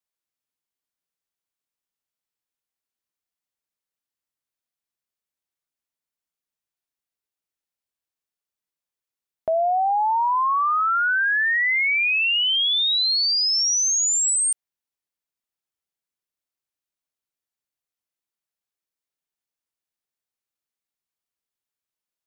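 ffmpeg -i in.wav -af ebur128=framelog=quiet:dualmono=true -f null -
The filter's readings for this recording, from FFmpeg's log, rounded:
Integrated loudness:
  I:         -15.6 LUFS
  Threshold: -25.8 LUFS
Loudness range:
  LRA:        10.7 LU
  Threshold: -37.4 LUFS
  LRA low:   -25.4 LUFS
  LRA high:  -14.7 LUFS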